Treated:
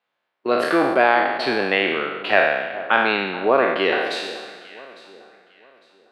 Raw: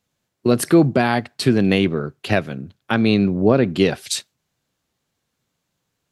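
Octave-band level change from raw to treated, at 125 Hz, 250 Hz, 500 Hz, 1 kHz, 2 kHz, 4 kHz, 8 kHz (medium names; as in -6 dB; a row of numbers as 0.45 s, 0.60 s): -19.5 dB, -9.0 dB, +0.5 dB, +6.5 dB, +7.0 dB, +0.5 dB, under -15 dB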